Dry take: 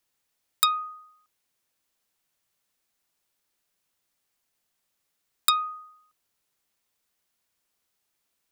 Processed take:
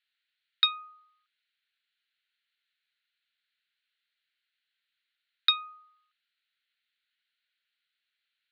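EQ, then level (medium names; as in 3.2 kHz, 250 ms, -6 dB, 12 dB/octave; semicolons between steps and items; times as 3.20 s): Chebyshev band-pass 1.4–4.2 kHz, order 4; distance through air 130 m; tilt EQ +3.5 dB/octave; 0.0 dB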